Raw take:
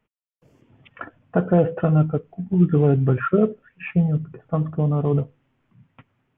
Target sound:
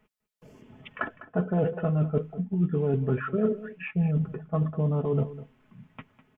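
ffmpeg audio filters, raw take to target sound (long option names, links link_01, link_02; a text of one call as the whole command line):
ffmpeg -i in.wav -af "aecho=1:1:4.7:0.48,areverse,acompressor=threshold=-28dB:ratio=6,areverse,aecho=1:1:202:0.158,volume=4.5dB" out.wav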